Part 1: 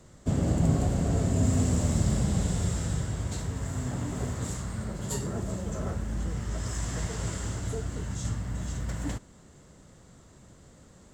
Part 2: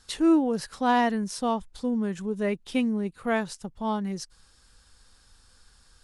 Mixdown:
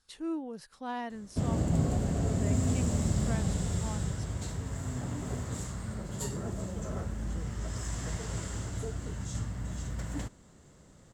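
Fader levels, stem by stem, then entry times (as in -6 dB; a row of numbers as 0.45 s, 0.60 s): -3.5 dB, -14.5 dB; 1.10 s, 0.00 s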